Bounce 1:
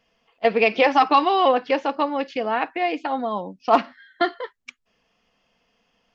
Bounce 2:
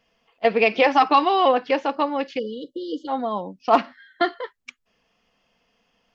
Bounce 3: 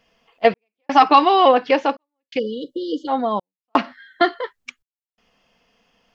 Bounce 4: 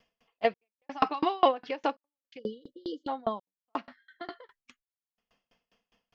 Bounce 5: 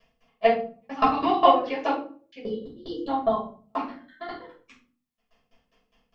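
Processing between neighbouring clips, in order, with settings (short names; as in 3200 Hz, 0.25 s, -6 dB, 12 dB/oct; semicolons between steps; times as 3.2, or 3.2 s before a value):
spectral delete 2.39–3.08, 570–2900 Hz
step gate "xxx..xxx" 84 bpm -60 dB; gain +4.5 dB
dB-ramp tremolo decaying 4.9 Hz, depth 32 dB; gain -3 dB
reverb RT60 0.40 s, pre-delay 5 ms, DRR -7 dB; gain -4.5 dB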